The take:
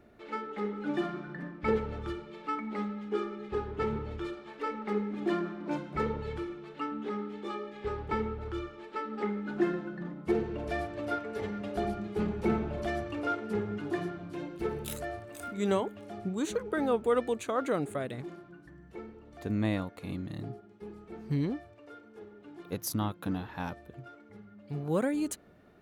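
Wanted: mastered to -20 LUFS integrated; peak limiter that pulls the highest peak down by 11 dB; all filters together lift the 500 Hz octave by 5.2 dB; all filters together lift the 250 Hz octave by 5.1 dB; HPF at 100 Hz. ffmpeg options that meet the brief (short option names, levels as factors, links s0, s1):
-af "highpass=100,equalizer=f=250:t=o:g=5.5,equalizer=f=500:t=o:g=4.5,volume=4.73,alimiter=limit=0.355:level=0:latency=1"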